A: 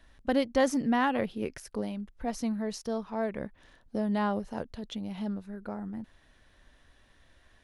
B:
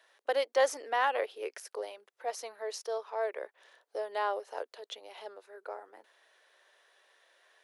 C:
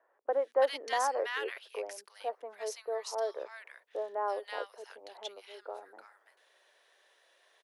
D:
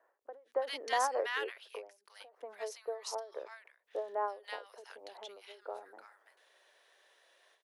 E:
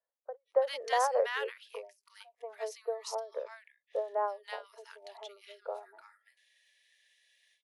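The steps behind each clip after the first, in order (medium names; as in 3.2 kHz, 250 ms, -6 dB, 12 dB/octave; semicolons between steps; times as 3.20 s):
steep high-pass 400 Hz 48 dB/octave
bands offset in time lows, highs 330 ms, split 1.4 kHz
endings held to a fixed fall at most 150 dB/s
resonant low shelf 380 Hz -9.5 dB, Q 3; crackle 100 per s -63 dBFS; spectral noise reduction 26 dB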